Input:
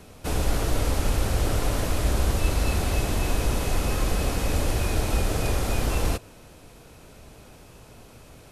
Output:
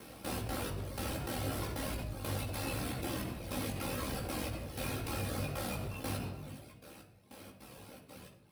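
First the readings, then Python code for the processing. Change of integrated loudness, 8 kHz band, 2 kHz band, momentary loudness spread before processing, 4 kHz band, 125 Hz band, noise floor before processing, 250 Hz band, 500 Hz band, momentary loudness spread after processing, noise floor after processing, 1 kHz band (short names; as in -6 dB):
-12.0 dB, -11.5 dB, -10.0 dB, 2 LU, -10.0 dB, -12.5 dB, -49 dBFS, -8.5 dB, -11.0 dB, 16 LU, -60 dBFS, -10.0 dB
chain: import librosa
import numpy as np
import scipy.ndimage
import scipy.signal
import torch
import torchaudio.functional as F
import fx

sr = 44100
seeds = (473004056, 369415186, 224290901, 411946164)

p1 = scipy.ndimage.median_filter(x, 3, mode='constant')
p2 = fx.high_shelf(p1, sr, hz=5300.0, db=10.0)
p3 = p2 + fx.echo_single(p2, sr, ms=423, db=-20.5, dry=0)
p4 = fx.step_gate(p3, sr, bpm=154, pattern='xxxx.xx...xx.', floor_db=-12.0, edge_ms=4.5)
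p5 = p4 * np.sin(2.0 * np.pi * 39.0 * np.arange(len(p4)) / sr)
p6 = scipy.signal.sosfilt(scipy.signal.butter(2, 120.0, 'highpass', fs=sr, output='sos'), p5)
p7 = fx.dereverb_blind(p6, sr, rt60_s=1.1)
p8 = fx.peak_eq(p7, sr, hz=6900.0, db=-10.0, octaves=0.51)
p9 = fx.room_shoebox(p8, sr, seeds[0], volume_m3=2800.0, walls='furnished', distance_m=2.2)
p10 = fx.chorus_voices(p9, sr, voices=6, hz=0.64, base_ms=18, depth_ms=2.9, mix_pct=40)
p11 = fx.over_compress(p10, sr, threshold_db=-42.0, ratio=-1.0)
p12 = p10 + F.gain(torch.from_numpy(p11), -1.0).numpy()
y = F.gain(torch.from_numpy(p12), -5.5).numpy()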